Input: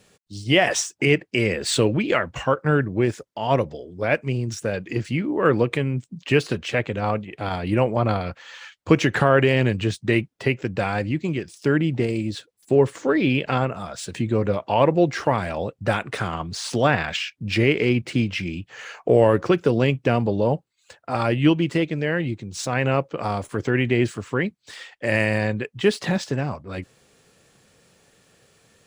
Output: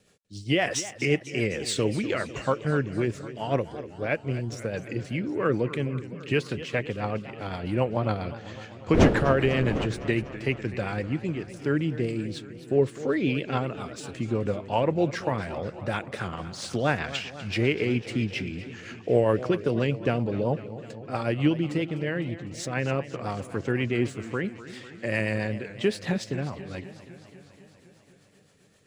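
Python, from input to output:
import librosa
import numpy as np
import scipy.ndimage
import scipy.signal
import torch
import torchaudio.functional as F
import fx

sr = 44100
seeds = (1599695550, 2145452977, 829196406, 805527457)

y = fx.dmg_wind(x, sr, seeds[0], corner_hz=480.0, level_db=-15.0, at=(8.93, 9.85), fade=0.02)
y = fx.rotary(y, sr, hz=7.5)
y = fx.echo_warbled(y, sr, ms=251, feedback_pct=70, rate_hz=2.8, cents=149, wet_db=-15)
y = y * librosa.db_to_amplitude(-4.0)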